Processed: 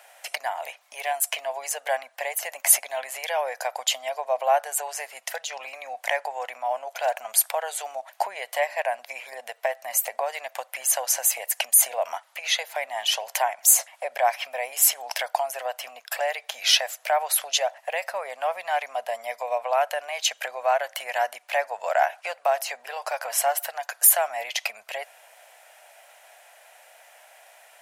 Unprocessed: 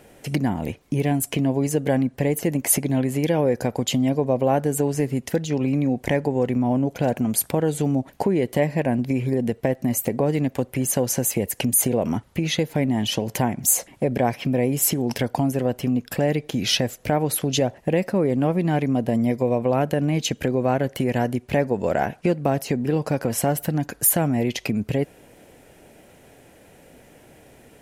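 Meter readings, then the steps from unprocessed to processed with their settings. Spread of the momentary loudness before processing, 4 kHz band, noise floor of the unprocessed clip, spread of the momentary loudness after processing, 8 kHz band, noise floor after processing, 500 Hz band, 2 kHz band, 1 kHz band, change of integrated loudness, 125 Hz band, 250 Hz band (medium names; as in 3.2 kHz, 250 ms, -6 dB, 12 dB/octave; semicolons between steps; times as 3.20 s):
5 LU, +3.0 dB, -52 dBFS, 14 LU, +2.5 dB, -57 dBFS, -5.5 dB, +3.5 dB, +3.0 dB, -2.0 dB, under -40 dB, under -40 dB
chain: elliptic high-pass 650 Hz, stop band 50 dB; trim +3.5 dB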